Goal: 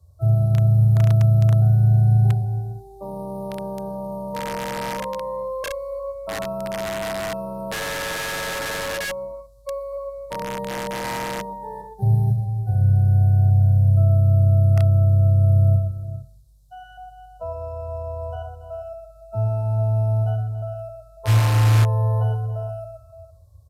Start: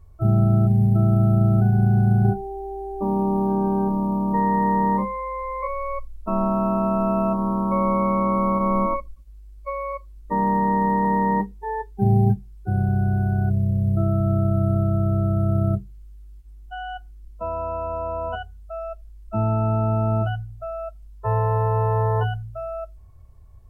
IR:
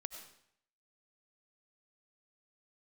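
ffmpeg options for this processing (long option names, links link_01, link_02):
-filter_complex "[0:a]highpass=frequency=70:width=0.5412,highpass=frequency=70:width=1.3066,aecho=1:1:71|113|124|281|400|461:0.266|0.355|0.335|0.2|0.2|0.15,asplit=2[link_01][link_02];[1:a]atrim=start_sample=2205,lowpass=2500[link_03];[link_02][link_03]afir=irnorm=-1:irlink=0,volume=-7.5dB[link_04];[link_01][link_04]amix=inputs=2:normalize=0,asplit=3[link_05][link_06][link_07];[link_05]afade=type=out:start_time=21.27:duration=0.02[link_08];[link_06]acontrast=88,afade=type=in:start_time=21.27:duration=0.02,afade=type=out:start_time=21.83:duration=0.02[link_09];[link_07]afade=type=in:start_time=21.83:duration=0.02[link_10];[link_08][link_09][link_10]amix=inputs=3:normalize=0,firequalizer=gain_entry='entry(130,0);entry(220,-23);entry(340,-18);entry(560,2);entry(800,-10);entry(1100,-10);entry(2100,-26);entry(3900,4)':delay=0.05:min_phase=1,acrossover=split=200|900[link_11][link_12][link_13];[link_12]aeval=exprs='(mod(15.8*val(0)+1,2)-1)/15.8':channel_layout=same[link_14];[link_11][link_14][link_13]amix=inputs=3:normalize=0,aresample=32000,aresample=44100"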